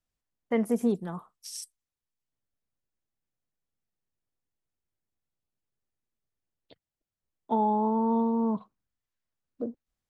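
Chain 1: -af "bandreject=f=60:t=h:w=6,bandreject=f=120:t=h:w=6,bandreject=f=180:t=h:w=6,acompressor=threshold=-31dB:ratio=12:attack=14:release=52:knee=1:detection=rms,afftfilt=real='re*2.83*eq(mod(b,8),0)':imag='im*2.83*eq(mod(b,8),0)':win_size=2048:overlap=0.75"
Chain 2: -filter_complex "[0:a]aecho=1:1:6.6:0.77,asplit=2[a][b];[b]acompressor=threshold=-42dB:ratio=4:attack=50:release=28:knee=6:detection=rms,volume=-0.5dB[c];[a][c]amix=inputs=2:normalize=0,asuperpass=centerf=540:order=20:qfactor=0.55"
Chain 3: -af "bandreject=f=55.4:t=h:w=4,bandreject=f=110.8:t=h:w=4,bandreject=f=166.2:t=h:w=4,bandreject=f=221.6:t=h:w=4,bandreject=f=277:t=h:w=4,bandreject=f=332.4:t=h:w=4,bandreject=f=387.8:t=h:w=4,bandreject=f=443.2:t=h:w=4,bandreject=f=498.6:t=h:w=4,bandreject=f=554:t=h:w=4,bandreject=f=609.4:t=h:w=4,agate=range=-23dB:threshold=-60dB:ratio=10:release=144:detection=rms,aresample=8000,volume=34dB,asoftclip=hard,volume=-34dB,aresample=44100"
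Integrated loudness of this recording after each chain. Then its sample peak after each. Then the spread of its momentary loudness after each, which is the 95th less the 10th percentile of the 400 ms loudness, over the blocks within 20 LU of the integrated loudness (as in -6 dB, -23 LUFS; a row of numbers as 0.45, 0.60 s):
-40.0, -27.0, -38.0 LUFS; -22.5, -13.5, -31.5 dBFS; 14, 12, 8 LU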